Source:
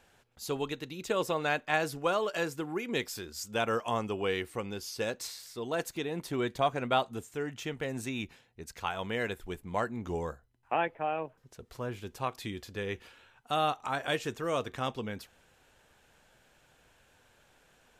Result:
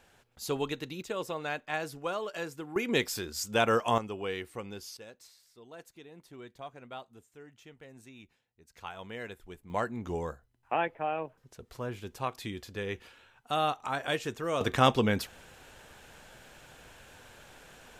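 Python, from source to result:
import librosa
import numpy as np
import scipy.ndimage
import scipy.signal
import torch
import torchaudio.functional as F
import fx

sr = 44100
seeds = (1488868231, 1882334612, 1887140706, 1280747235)

y = fx.gain(x, sr, db=fx.steps((0.0, 1.5), (1.02, -5.0), (2.76, 4.5), (3.98, -4.0), (4.97, -16.0), (8.74, -8.0), (9.7, 0.0), (14.61, 11.0)))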